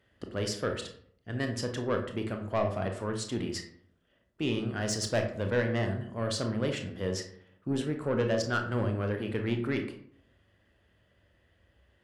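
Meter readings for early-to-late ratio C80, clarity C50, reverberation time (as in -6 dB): 12.0 dB, 8.5 dB, 0.60 s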